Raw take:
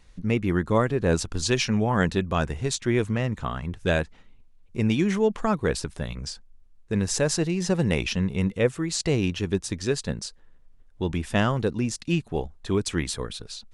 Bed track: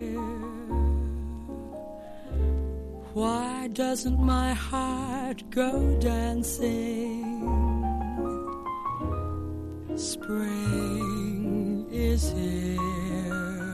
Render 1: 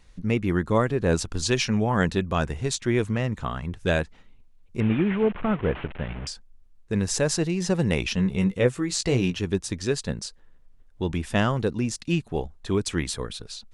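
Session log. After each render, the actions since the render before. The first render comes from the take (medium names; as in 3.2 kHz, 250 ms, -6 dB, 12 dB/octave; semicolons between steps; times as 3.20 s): 4.80–6.27 s: one-bit delta coder 16 kbps, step -32 dBFS; 8.16–9.36 s: doubling 16 ms -7 dB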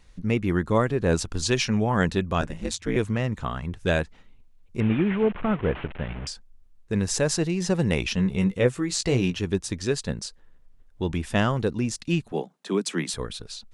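2.41–2.96 s: ring modulator 89 Hz; 12.32–13.13 s: steep high-pass 150 Hz 96 dB/octave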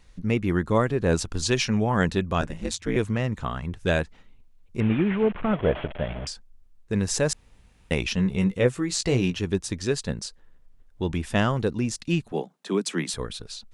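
3.18–3.65 s: short-mantissa float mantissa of 8-bit; 5.53–6.25 s: small resonant body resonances 620/3300 Hz, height 12 dB, ringing for 25 ms; 7.33–7.91 s: room tone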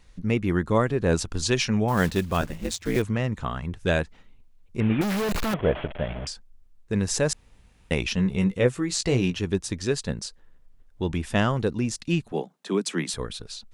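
1.88–3.02 s: block-companded coder 5-bit; 5.01–5.54 s: companded quantiser 2-bit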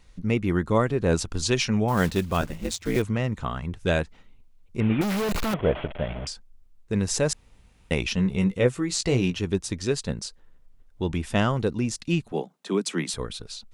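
band-stop 1.7 kHz, Q 18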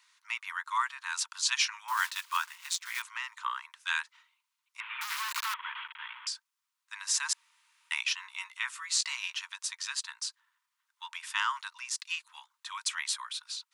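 Chebyshev high-pass 920 Hz, order 8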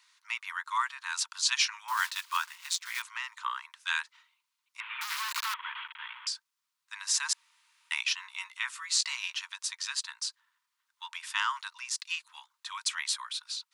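peaking EQ 4.4 kHz +2.5 dB 0.77 oct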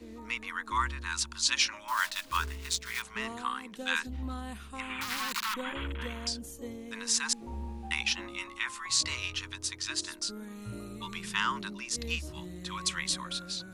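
add bed track -14 dB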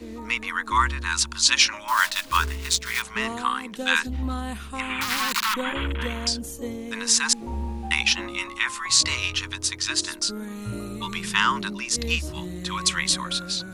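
trim +9 dB; peak limiter -3 dBFS, peak gain reduction 1.5 dB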